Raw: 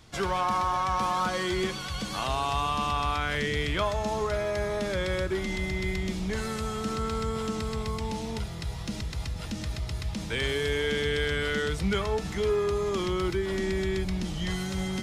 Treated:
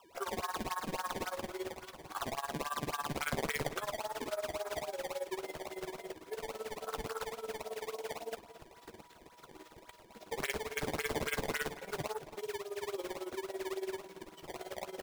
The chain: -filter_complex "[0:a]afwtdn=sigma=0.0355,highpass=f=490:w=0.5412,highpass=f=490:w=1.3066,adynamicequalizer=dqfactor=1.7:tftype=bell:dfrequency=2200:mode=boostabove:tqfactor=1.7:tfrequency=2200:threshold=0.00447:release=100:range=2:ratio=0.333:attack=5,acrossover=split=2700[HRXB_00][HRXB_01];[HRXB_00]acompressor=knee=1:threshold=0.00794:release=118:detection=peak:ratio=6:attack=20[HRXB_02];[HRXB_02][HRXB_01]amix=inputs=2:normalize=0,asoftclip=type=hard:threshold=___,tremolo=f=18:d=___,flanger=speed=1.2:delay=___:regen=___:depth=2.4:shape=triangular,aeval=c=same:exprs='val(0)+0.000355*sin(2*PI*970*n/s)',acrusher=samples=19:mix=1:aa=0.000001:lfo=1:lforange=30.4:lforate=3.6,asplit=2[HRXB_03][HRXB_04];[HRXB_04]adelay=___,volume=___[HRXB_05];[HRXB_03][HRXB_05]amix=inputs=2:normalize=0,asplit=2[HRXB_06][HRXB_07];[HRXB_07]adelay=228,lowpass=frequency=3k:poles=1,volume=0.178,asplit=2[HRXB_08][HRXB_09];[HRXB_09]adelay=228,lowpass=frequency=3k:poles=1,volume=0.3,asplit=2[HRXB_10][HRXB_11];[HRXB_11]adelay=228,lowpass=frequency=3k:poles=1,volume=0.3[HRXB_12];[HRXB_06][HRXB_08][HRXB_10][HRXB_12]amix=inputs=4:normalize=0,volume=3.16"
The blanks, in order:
0.0316, 0.92, 0.4, -55, 13, 0.211